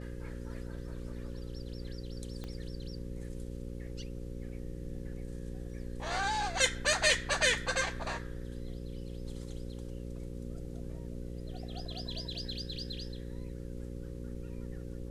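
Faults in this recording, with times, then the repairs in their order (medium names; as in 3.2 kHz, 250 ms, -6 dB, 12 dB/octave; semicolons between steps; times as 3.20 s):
buzz 60 Hz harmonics 9 -42 dBFS
2.44 s: pop -28 dBFS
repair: de-click; de-hum 60 Hz, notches 9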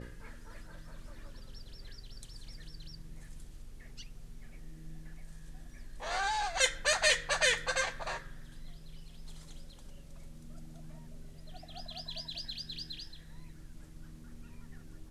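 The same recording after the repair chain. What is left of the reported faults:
2.44 s: pop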